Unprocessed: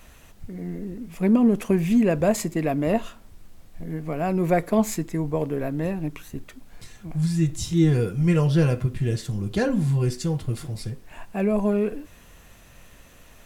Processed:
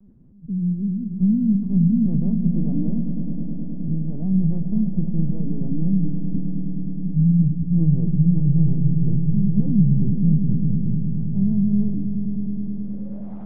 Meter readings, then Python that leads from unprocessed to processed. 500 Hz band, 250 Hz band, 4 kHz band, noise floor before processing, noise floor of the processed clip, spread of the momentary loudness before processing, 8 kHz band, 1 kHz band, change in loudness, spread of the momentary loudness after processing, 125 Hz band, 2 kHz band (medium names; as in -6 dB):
-16.5 dB, +4.5 dB, under -40 dB, -50 dBFS, -31 dBFS, 15 LU, under -40 dB, under -20 dB, +2.5 dB, 10 LU, +5.5 dB, under -35 dB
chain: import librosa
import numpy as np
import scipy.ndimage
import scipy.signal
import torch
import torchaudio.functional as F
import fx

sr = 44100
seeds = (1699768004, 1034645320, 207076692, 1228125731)

y = scipy.signal.sosfilt(scipy.signal.butter(2, 150.0, 'highpass', fs=sr, output='sos'), x)
y = (np.kron(scipy.signal.resample_poly(y, 1, 8), np.eye(8)[0]) * 8)[:len(y)]
y = 10.0 ** (-8.5 / 20.0) * np.tanh(y / 10.0 ** (-8.5 / 20.0))
y = fx.filter_sweep_lowpass(y, sr, from_hz=190.0, to_hz=790.0, start_s=12.46, end_s=13.34, q=2.6)
y = fx.lpc_vocoder(y, sr, seeds[0], excitation='pitch_kept', order=8)
y = fx.echo_swell(y, sr, ms=105, loudest=5, wet_db=-12.0)
y = y * librosa.db_to_amplitude(6.0)